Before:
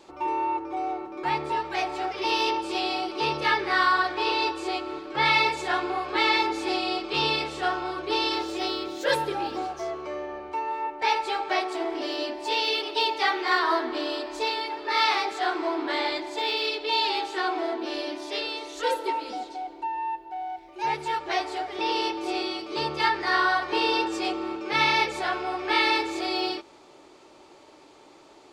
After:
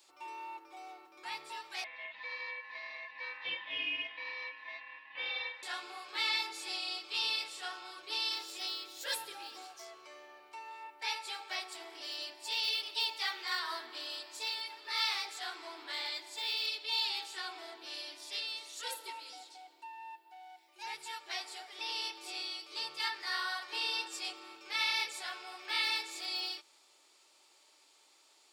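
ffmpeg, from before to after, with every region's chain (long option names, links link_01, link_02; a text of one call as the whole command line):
ffmpeg -i in.wav -filter_complex "[0:a]asettb=1/sr,asplit=3[link_01][link_02][link_03];[link_01]atrim=end=1.844[link_04];[link_02]atrim=start=1.84:end=5.63,asetpts=PTS-STARTPTS,afade=type=in:duration=0.004:curve=qsin,afade=type=out:start_time=3.786:duration=0.004:curve=qsin,lowpass=frequency=1900:width=0.5412,lowpass=frequency=1900:width=1.3066,aeval=exprs='val(0)*sin(2*PI*1400*n/s)':channel_layout=same[link_05];[link_03]atrim=start=5.626[link_06];[link_04][link_05]acrossfade=duration=0.004:curve1=hsin:curve2=qsin[link_07];[link_07][link_06]acrossfade=duration=0.004:curve1=qsin:curve2=hsin,aderivative,bandreject=frequency=6200:width=13" out.wav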